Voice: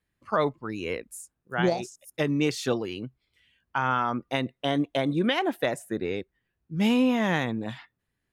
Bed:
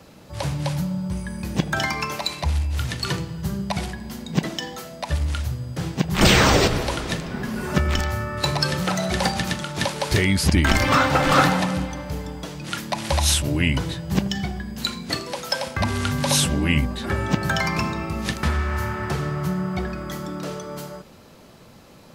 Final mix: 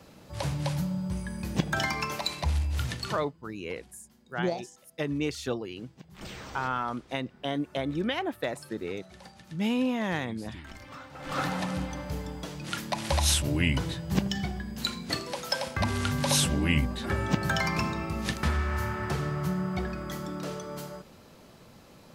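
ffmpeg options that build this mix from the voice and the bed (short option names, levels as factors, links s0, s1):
-filter_complex "[0:a]adelay=2800,volume=0.562[s0];[1:a]volume=7.5,afade=t=out:st=2.86:d=0.46:silence=0.0749894,afade=t=in:st=11.16:d=0.81:silence=0.0749894[s1];[s0][s1]amix=inputs=2:normalize=0"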